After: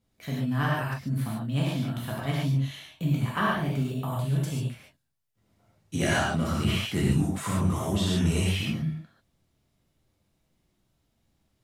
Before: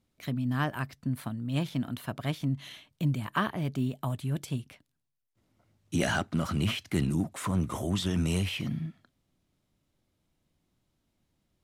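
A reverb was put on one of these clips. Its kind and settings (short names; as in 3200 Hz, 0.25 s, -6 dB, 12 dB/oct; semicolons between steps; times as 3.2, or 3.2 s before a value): non-linear reverb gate 0.17 s flat, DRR -5.5 dB; gain -2.5 dB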